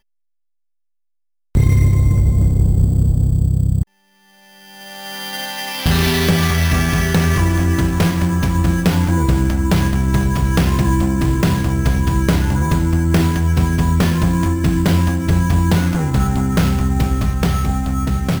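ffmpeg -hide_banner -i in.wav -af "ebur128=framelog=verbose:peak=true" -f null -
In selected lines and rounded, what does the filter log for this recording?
Integrated loudness:
  I:         -16.4 LUFS
  Threshold: -26.7 LUFS
Loudness range:
  LRA:         3.0 LU
  Threshold: -36.8 LUFS
  LRA low:   -19.0 LUFS
  LRA high:  -16.0 LUFS
True peak:
  Peak:       -4.3 dBFS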